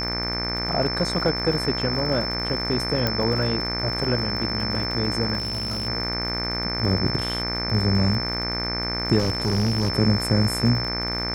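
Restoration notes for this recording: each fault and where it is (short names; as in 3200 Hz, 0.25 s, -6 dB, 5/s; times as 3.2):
buzz 60 Hz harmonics 40 -30 dBFS
crackle 80/s -32 dBFS
tone 5300 Hz -27 dBFS
3.07 pop -8 dBFS
5.38–5.88 clipped -23.5 dBFS
9.18–9.9 clipped -18 dBFS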